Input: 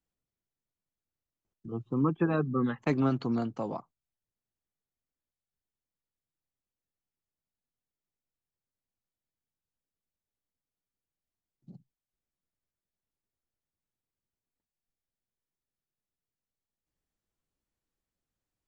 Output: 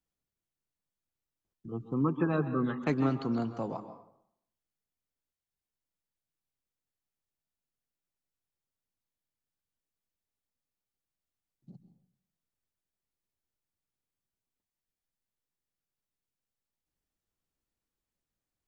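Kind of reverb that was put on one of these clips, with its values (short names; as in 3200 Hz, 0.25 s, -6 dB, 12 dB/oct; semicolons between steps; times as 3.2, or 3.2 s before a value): plate-style reverb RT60 0.69 s, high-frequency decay 0.65×, pre-delay 0.12 s, DRR 10 dB; gain -1.5 dB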